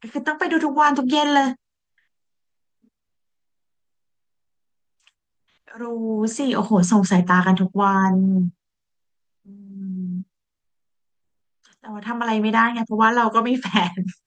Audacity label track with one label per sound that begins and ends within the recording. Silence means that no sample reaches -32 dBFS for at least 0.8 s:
5.710000	8.500000	sound
9.760000	10.220000	sound